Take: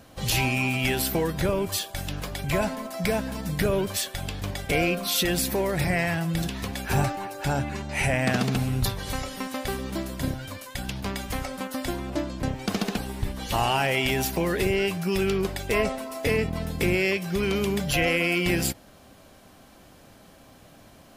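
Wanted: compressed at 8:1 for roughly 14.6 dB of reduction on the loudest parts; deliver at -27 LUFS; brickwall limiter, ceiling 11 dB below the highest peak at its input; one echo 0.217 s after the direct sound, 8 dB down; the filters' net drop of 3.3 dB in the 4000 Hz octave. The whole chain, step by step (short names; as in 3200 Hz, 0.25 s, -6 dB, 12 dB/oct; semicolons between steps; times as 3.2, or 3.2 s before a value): bell 4000 Hz -4.5 dB; compressor 8:1, threshold -35 dBFS; limiter -32 dBFS; echo 0.217 s -8 dB; gain +13.5 dB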